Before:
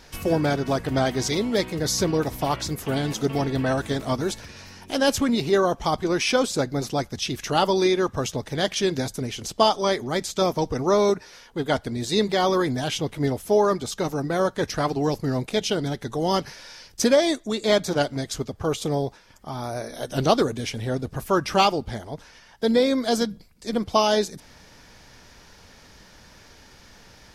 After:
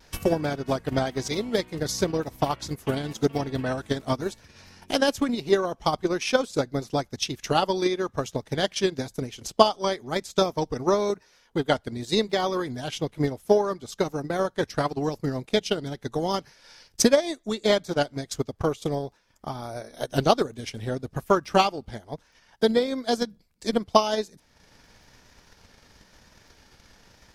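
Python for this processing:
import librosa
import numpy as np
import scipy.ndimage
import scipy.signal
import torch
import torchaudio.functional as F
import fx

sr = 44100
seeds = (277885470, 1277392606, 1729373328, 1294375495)

y = fx.transient(x, sr, attack_db=10, sustain_db=-7)
y = fx.vibrato(y, sr, rate_hz=1.0, depth_cents=32.0)
y = fx.dmg_crackle(y, sr, seeds[0], per_s=11.0, level_db=-49.0)
y = y * librosa.db_to_amplitude(-6.0)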